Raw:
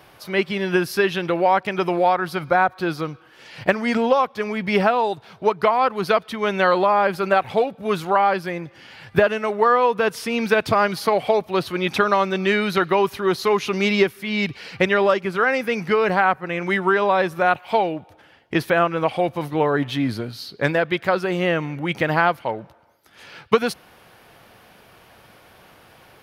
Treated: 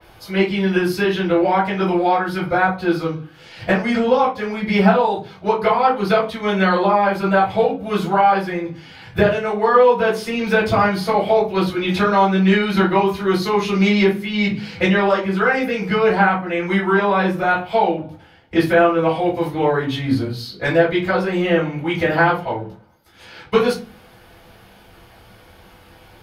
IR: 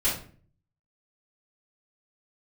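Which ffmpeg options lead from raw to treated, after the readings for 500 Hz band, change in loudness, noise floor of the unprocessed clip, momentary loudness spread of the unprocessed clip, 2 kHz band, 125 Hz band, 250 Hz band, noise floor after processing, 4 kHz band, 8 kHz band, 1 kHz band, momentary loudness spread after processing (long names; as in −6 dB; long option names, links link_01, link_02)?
+2.5 dB, +2.5 dB, −51 dBFS, 7 LU, +1.5 dB, +6.0 dB, +6.0 dB, −47 dBFS, +1.5 dB, can't be measured, +2.0 dB, 8 LU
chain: -filter_complex "[1:a]atrim=start_sample=2205,asetrate=66150,aresample=44100[link_01];[0:a][link_01]afir=irnorm=-1:irlink=0,adynamicequalizer=threshold=0.0447:dfrequency=3700:dqfactor=0.7:tfrequency=3700:tqfactor=0.7:attack=5:release=100:ratio=0.375:range=2:mode=cutabove:tftype=highshelf,volume=-5dB"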